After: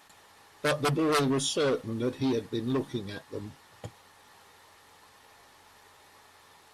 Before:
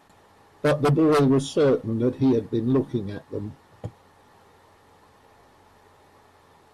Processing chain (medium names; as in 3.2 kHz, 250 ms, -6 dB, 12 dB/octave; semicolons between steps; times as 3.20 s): tilt shelf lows -7.5 dB, about 1.1 kHz; in parallel at -3 dB: peak limiter -21 dBFS, peak gain reduction 10 dB; on the sum: trim -5.5 dB